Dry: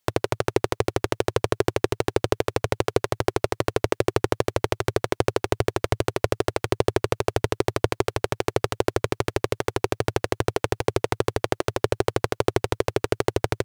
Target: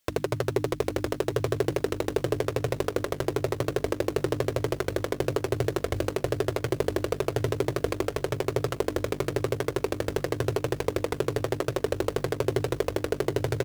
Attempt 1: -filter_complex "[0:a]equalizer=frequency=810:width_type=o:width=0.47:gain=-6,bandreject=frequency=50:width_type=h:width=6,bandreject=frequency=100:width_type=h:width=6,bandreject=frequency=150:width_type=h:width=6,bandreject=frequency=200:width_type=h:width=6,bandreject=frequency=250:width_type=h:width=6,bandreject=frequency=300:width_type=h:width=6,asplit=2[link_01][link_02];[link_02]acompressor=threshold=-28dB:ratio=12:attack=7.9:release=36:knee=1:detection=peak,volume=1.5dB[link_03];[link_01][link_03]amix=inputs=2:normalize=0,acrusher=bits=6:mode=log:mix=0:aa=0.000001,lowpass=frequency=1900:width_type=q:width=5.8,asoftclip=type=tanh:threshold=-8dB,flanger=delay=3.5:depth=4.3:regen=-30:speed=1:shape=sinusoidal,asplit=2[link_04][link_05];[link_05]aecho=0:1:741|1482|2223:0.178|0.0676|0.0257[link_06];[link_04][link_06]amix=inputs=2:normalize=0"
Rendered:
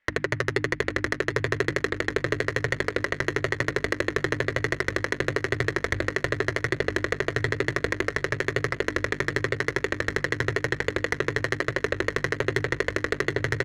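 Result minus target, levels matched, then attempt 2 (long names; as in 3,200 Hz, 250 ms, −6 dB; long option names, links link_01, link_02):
2,000 Hz band +11.0 dB
-filter_complex "[0:a]equalizer=frequency=810:width_type=o:width=0.47:gain=-6,bandreject=frequency=50:width_type=h:width=6,bandreject=frequency=100:width_type=h:width=6,bandreject=frequency=150:width_type=h:width=6,bandreject=frequency=200:width_type=h:width=6,bandreject=frequency=250:width_type=h:width=6,bandreject=frequency=300:width_type=h:width=6,asplit=2[link_01][link_02];[link_02]acompressor=threshold=-28dB:ratio=12:attack=7.9:release=36:knee=1:detection=peak,volume=1.5dB[link_03];[link_01][link_03]amix=inputs=2:normalize=0,acrusher=bits=6:mode=log:mix=0:aa=0.000001,asoftclip=type=tanh:threshold=-8dB,flanger=delay=3.5:depth=4.3:regen=-30:speed=1:shape=sinusoidal,asplit=2[link_04][link_05];[link_05]aecho=0:1:741|1482|2223:0.178|0.0676|0.0257[link_06];[link_04][link_06]amix=inputs=2:normalize=0"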